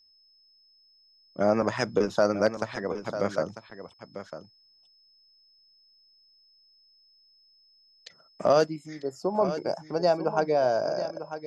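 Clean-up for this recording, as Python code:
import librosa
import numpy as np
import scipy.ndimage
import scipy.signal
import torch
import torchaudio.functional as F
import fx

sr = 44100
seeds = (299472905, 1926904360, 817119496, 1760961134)

y = fx.fix_declip(x, sr, threshold_db=-12.0)
y = fx.notch(y, sr, hz=5200.0, q=30.0)
y = fx.fix_echo_inverse(y, sr, delay_ms=946, level_db=-11.0)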